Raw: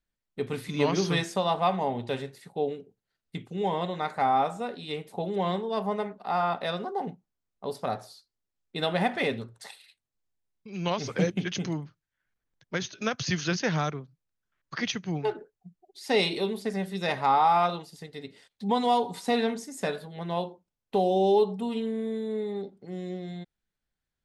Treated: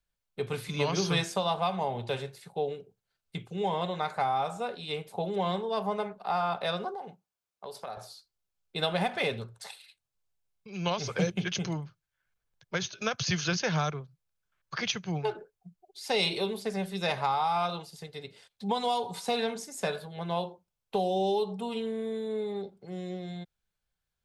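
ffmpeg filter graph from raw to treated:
-filter_complex "[0:a]asettb=1/sr,asplit=3[a][b][c];[a]atrim=end=6.944[d];[b]atrim=start=6.94:end=7.97,asetpts=PTS-STARTPTS,afade=t=in:d=0.004:c=qsin,afade=t=out:st=1.026:d=0.004:c=qsin,highpass=f=380:p=1,acompressor=threshold=-38dB:ratio=3:attack=3.2:release=140:knee=1:detection=peak[e];[c]atrim=start=7.966[f];[d][e]acrossfade=d=0.004:c1=hsin:c2=qsin[g];[g][f]acrossfade=d=0.004:c1=qsin:c2=hsin,equalizer=f=270:w=2.2:g=-11.5,bandreject=f=1.9k:w=9.3,acrossover=split=180|3000[h][i][j];[i]acompressor=threshold=-27dB:ratio=6[k];[h][k][j]amix=inputs=3:normalize=0,volume=1.5dB"

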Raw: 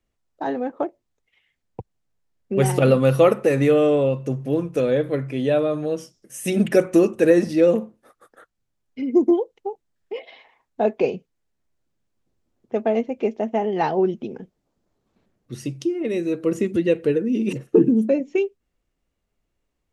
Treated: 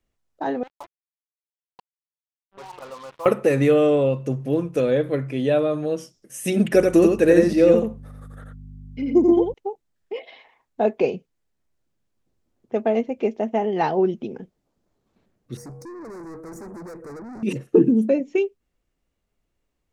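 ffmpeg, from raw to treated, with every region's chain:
-filter_complex "[0:a]asettb=1/sr,asplit=3[a][b][c];[a]atrim=end=0.634[d];[b]atrim=start=0.63:end=3.26,asetpts=PTS-STARTPTS,afade=t=in:d=0.004:c=qsin,afade=t=out:st=2.626:d=0.004:c=qsin,bandpass=f=1k:t=q:w=9.5,acrusher=bits=6:mix=0:aa=0.5[e];[c]atrim=start=3.256[f];[d][e]acrossfade=d=0.004:c1=hsin:c2=qsin[g];[g][f]acrossfade=d=0.004:c1=qsin:c2=hsin,asettb=1/sr,asplit=3[h][i][j];[h]atrim=end=6.744[k];[i]atrim=start=6.74:end=9.54,asetpts=PTS-STARTPTS,afade=t=in:d=0.004:c=qsin,afade=t=out:st=2.796:d=0.004:c=qsin,aeval=exprs='val(0)+0.0126*(sin(2*PI*50*n/s)+sin(2*PI*2*50*n/s)/2+sin(2*PI*3*50*n/s)/3+sin(2*PI*4*50*n/s)/4+sin(2*PI*5*50*n/s)/5)':c=same,aecho=1:1:87:0.631,atrim=end_sample=123480[l];[j]atrim=start=9.536[m];[k][l]acrossfade=d=0.004:c1=hsin:c2=qsin[n];[n][m]acrossfade=d=0.004:c1=qsin:c2=hsin,asettb=1/sr,asplit=3[o][p][q];[o]atrim=end=15.574[r];[p]atrim=start=15.57:end=17.43,asetpts=PTS-STARTPTS,afade=t=in:d=0.004:c=qsin,afade=t=out:st=1.856:d=0.004:c=qsin,aeval=exprs='val(0)+0.00891*sin(2*PI*480*n/s)':c=same,aeval=exprs='(tanh(63.1*val(0)+0.1)-tanh(0.1))/63.1':c=same,asuperstop=centerf=3100:order=4:qfactor=0.86[s];[q]atrim=start=17.426[t];[r][s]acrossfade=d=0.004:c1=hsin:c2=qsin[u];[u][t]acrossfade=d=0.004:c1=qsin:c2=hsin"

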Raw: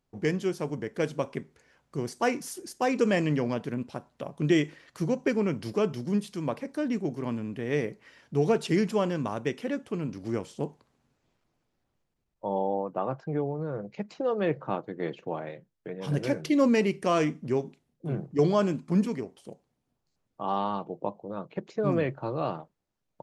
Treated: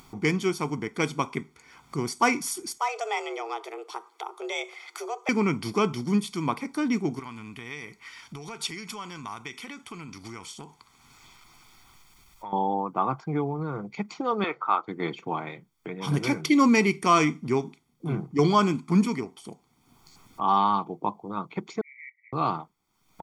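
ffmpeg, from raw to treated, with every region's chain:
-filter_complex "[0:a]asettb=1/sr,asplit=3[a][b][c];[a]atrim=end=2.784[d];[b]atrim=start=2.78:end=5.29,asetpts=PTS-STARTPTS,afade=t=in:d=0.004:c=qsin,afade=t=out:st=2.506:d=0.004:c=qsin,highpass=130,acompressor=threshold=-44dB:ratio=1.5:attack=3.2:release=140:knee=1:detection=peak,afreqshift=220[e];[c]atrim=start=5.286[f];[d][e]acrossfade=d=0.004:c1=hsin:c2=qsin[g];[g][f]acrossfade=d=0.004:c1=qsin:c2=hsin,asettb=1/sr,asplit=3[h][i][j];[h]atrim=end=7.194[k];[i]atrim=start=7.19:end=12.53,asetpts=PTS-STARTPTS,afade=t=in:d=0.004:c=qsin,afade=t=out:st=5.336:d=0.004:c=qsin,acompressor=threshold=-30dB:ratio=6:attack=3.2:release=140:knee=1:detection=peak,equalizer=f=270:w=0.34:g=-11.5[l];[j]atrim=start=12.526[m];[k][l]acrossfade=d=0.004:c1=hsin:c2=qsin[n];[n][m]acrossfade=d=0.004:c1=qsin:c2=hsin,asettb=1/sr,asplit=3[o][p][q];[o]atrim=end=14.444[r];[p]atrim=start=14.44:end=14.88,asetpts=PTS-STARTPTS,afade=t=in:d=0.004:c=qsin,afade=t=out:st=0.436:d=0.004:c=qsin,highpass=540,lowpass=5.7k,equalizer=f=1.3k:t=o:w=0.21:g=10[s];[q]atrim=start=14.876[t];[r][s]acrossfade=d=0.004:c1=hsin:c2=qsin[u];[u][t]acrossfade=d=0.004:c1=qsin:c2=hsin,asettb=1/sr,asplit=3[v][w][x];[v]atrim=end=21.814[y];[w]atrim=start=21.81:end=22.33,asetpts=PTS-STARTPTS,afade=t=in:d=0.004:c=qsin,afade=t=out:st=0.516:d=0.004:c=qsin,asuperpass=centerf=2100:order=12:qfactor=5.1,acompressor=threshold=-52dB:ratio=3:attack=3.2:release=140:knee=1:detection=peak[z];[x]atrim=start=22.326[aa];[y][z]acrossfade=d=0.004:c1=hsin:c2=qsin[ab];[ab][aa]acrossfade=d=0.004:c1=qsin:c2=hsin,lowshelf=f=220:g=-11.5,aecho=1:1:0.9:0.79,acompressor=mode=upward:threshold=-42dB:ratio=2.5,volume=6dB"

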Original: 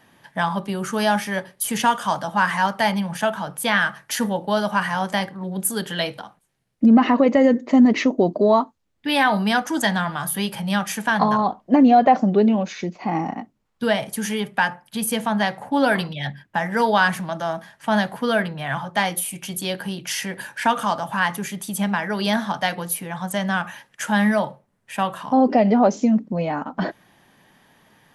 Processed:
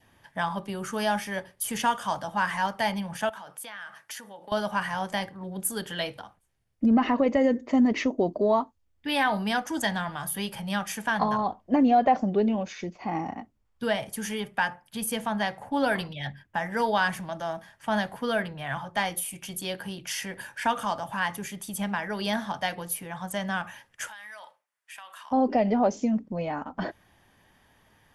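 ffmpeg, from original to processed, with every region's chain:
-filter_complex "[0:a]asettb=1/sr,asplit=3[a][b][c];[a]atrim=end=3.294[d];[b]atrim=start=3.29:end=4.52,asetpts=PTS-STARTPTS,afade=t=in:d=0.004:c=qsin,afade=t=out:st=1.226:d=0.004:c=qsin,acompressor=threshold=-28dB:ratio=16:attack=3.2:release=140:knee=1:detection=peak,highpass=f=620:p=1[e];[c]atrim=start=4.516[f];[d][e]acrossfade=d=0.004:c1=hsin:c2=qsin[g];[g][f]acrossfade=d=0.004:c1=qsin:c2=hsin,asettb=1/sr,asplit=3[h][i][j];[h]atrim=end=24.084[k];[i]atrim=start=24.08:end=25.31,asetpts=PTS-STARTPTS,afade=t=in:d=0.004:c=qsin,afade=t=out:st=1.226:d=0.004:c=qsin,highpass=1.4k,acompressor=threshold=-33dB:ratio=16:attack=3.2:release=140:knee=1:detection=peak[l];[j]atrim=start=25.306[m];[k][l]acrossfade=d=0.004:c1=hsin:c2=qsin[n];[n][m]acrossfade=d=0.004:c1=qsin:c2=hsin,lowshelf=f=110:t=q:w=1.5:g=10,bandreject=f=4k:w=16,adynamicequalizer=threshold=0.0141:dfrequency=1300:dqfactor=2.7:tfrequency=1300:tqfactor=2.7:attack=5:release=100:ratio=0.375:range=2:mode=cutabove:tftype=bell,volume=-6dB"

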